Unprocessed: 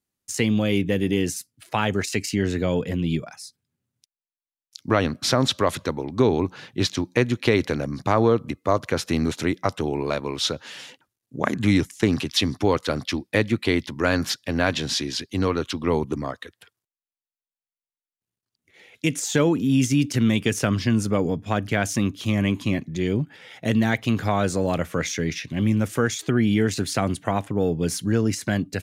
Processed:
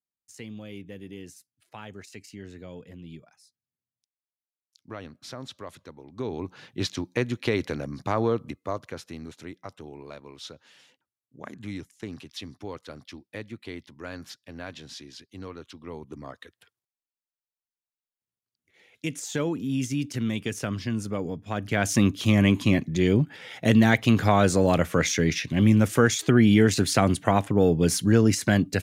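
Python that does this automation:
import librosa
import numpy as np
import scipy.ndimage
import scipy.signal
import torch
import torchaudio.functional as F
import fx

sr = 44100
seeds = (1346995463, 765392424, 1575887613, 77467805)

y = fx.gain(x, sr, db=fx.line((5.94, -19.0), (6.65, -6.0), (8.44, -6.0), (9.18, -17.0), (15.99, -17.0), (16.4, -8.0), (21.47, -8.0), (21.99, 2.5)))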